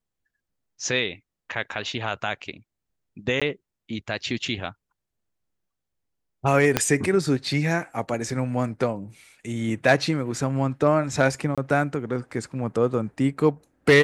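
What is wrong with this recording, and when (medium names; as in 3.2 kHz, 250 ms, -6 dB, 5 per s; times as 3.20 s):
3.40–3.42 s: dropout 16 ms
6.77 s: pop -3 dBFS
11.55–11.58 s: dropout 26 ms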